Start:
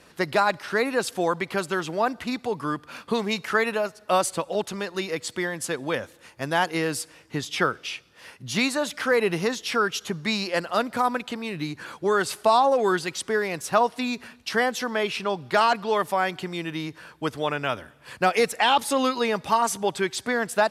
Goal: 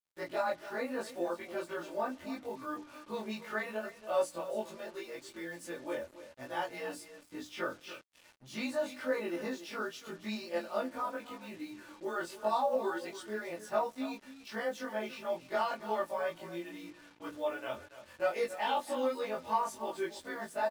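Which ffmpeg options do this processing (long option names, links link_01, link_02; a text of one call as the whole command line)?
ffmpeg -i in.wav -af "afftfilt=real='re':imag='-im':win_size=2048:overlap=0.75,aecho=1:1:3.4:0.54,adynamicequalizer=threshold=0.0126:dfrequency=530:dqfactor=1.2:tfrequency=530:tqfactor=1.2:attack=5:release=100:ratio=0.375:range=3:mode=boostabove:tftype=bell,flanger=delay=7.5:depth=6.5:regen=-22:speed=0.76:shape=triangular,highshelf=frequency=2700:gain=-4.5,bandreject=frequency=60:width_type=h:width=6,bandreject=frequency=120:width_type=h:width=6,bandreject=frequency=180:width_type=h:width=6,bandreject=frequency=240:width_type=h:width=6,bandreject=frequency=300:width_type=h:width=6,aecho=1:1:282:0.2,acrusher=bits=7:mix=0:aa=0.5,volume=-7.5dB" out.wav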